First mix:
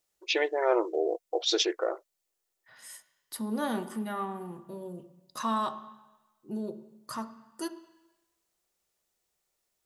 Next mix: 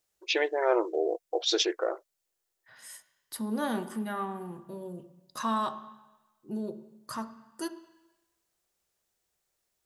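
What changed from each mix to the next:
second voice: add bell 86 Hz +5 dB 0.93 oct; master: remove notch 1600 Hz, Q 18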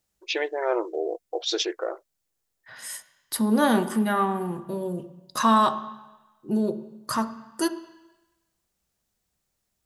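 second voice +10.5 dB

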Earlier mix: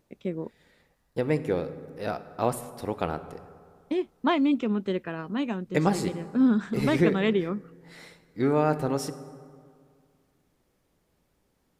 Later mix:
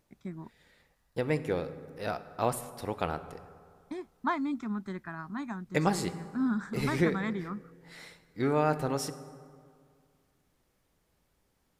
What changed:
first voice: add fixed phaser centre 1200 Hz, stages 4; master: add bell 290 Hz -5 dB 2.6 oct

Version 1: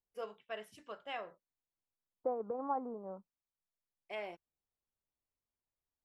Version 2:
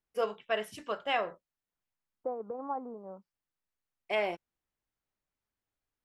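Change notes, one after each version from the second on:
first voice +12.0 dB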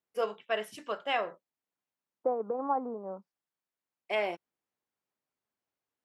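second voice +6.0 dB; master: add HPF 180 Hz 12 dB/oct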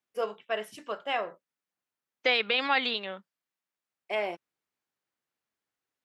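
second voice: remove steep low-pass 1100 Hz 48 dB/oct

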